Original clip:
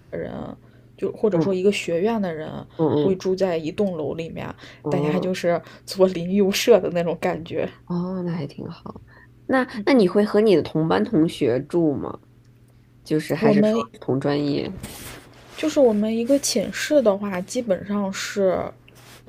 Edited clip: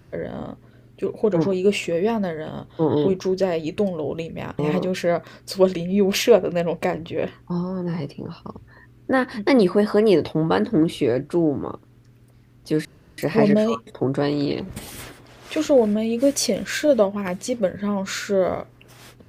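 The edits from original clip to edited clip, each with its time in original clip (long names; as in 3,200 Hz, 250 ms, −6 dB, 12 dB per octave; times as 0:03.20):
0:04.59–0:04.99: remove
0:13.25: splice in room tone 0.33 s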